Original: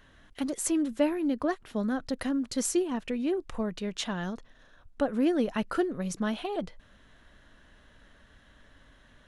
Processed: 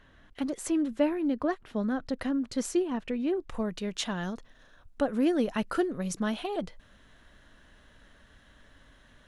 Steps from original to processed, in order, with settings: high shelf 5700 Hz -10.5 dB, from 3.5 s +3 dB

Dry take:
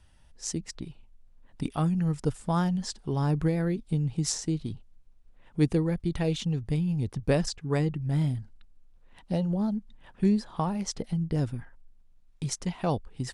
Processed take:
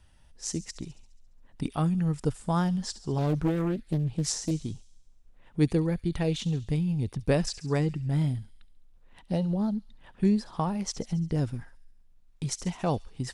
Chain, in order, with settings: on a send: thin delay 69 ms, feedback 63%, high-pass 3500 Hz, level -13.5 dB; 3.18–4.51 on the sum: Doppler distortion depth 0.69 ms

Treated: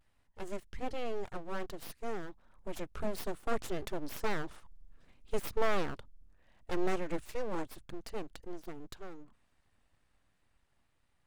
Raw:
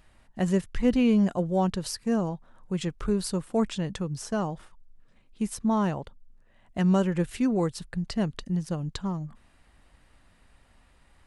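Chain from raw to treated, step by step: Doppler pass-by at 5.02, 7 m/s, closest 7.9 m; vibrato 0.38 Hz 29 cents; full-wave rectifier

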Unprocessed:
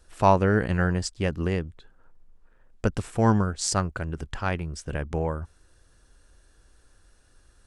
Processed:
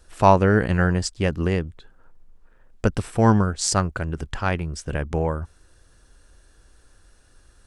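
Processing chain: 2.94–3.43 notch 6900 Hz, Q 8.9; gain +4 dB

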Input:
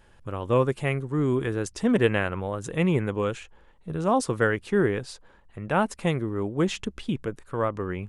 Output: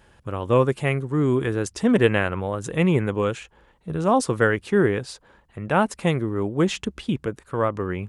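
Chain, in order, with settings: HPF 41 Hz; gain +3.5 dB

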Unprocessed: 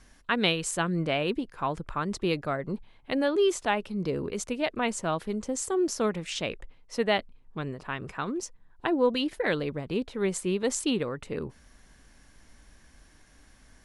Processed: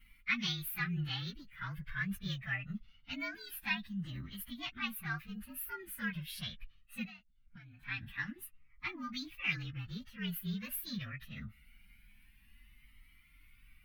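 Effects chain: inharmonic rescaling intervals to 115%; EQ curve 220 Hz 0 dB, 460 Hz -29 dB, 1800 Hz +6 dB, 2800 Hz +6 dB, 7300 Hz -15 dB, 11000 Hz +2 dB; 7.05–7.83 compressor 20:1, threshold -47 dBFS, peak gain reduction 22 dB; cascading flanger rising 0.23 Hz

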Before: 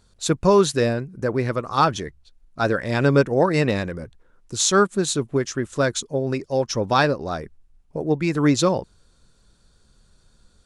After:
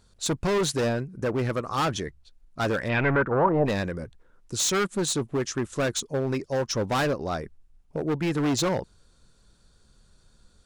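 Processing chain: overloaded stage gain 20 dB; 2.88–3.65 synth low-pass 2900 Hz -> 630 Hz, resonance Q 3.6; gain -1.5 dB

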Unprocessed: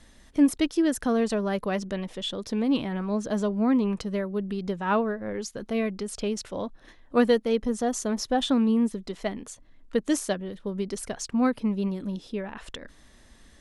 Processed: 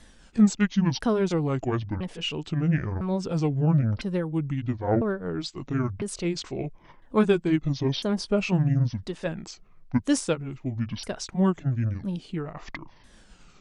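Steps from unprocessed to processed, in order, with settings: repeated pitch sweeps -12 st, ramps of 1.003 s; gain +2 dB

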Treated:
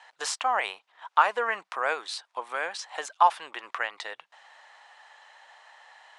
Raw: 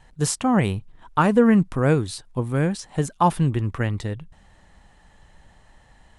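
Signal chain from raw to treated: HPF 720 Hz 24 dB/oct; in parallel at +2 dB: compressor, threshold -41 dBFS, peak gain reduction 24 dB; on the sum: LPF 5100 Hz 12 dB/oct

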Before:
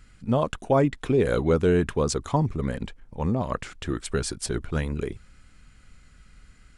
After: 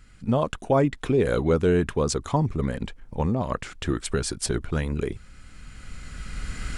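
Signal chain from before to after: recorder AGC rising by 12 dB/s

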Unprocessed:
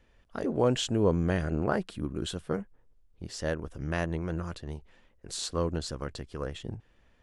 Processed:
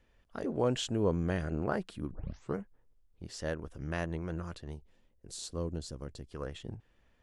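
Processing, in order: 2.11 tape start 0.44 s; 4.75–6.31 bell 1600 Hz -10 dB 2.5 oct; gain -4.5 dB

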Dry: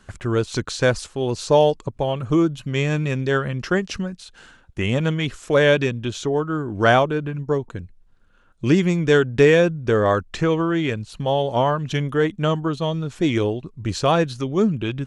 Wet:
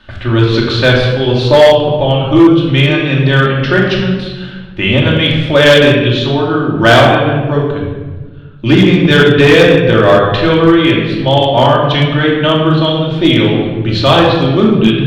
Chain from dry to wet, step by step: notches 50/100/150/200/250/300/350/400/450 Hz; shoebox room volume 1100 m³, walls mixed, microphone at 2.6 m; in parallel at -11.5 dB: sine folder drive 5 dB, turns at 3 dBFS; on the sum: resonant high shelf 5300 Hz -14 dB, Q 3; hard clip -2 dBFS, distortion -19 dB; gain +1 dB

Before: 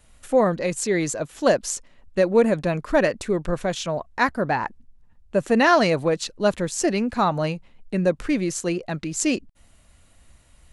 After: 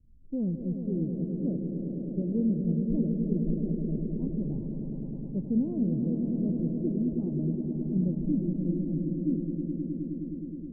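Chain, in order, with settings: inverse Chebyshev low-pass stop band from 1700 Hz, stop band 80 dB; on a send: swelling echo 0.105 s, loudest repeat 5, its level -8.5 dB; on the sum: gain -3.5 dB

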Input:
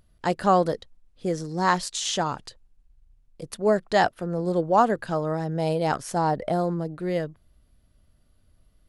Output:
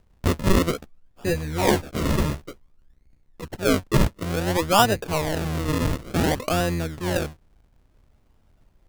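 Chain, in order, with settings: octaver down 1 oct, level -1 dB; treble ducked by the level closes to 1800 Hz, closed at -19 dBFS; bell 2800 Hz +9.5 dB 2.1 oct; notch 1200 Hz, Q 5.6; decimation with a swept rate 39×, swing 100% 0.56 Hz; 0.72–3.43 doubler 14 ms -5 dB

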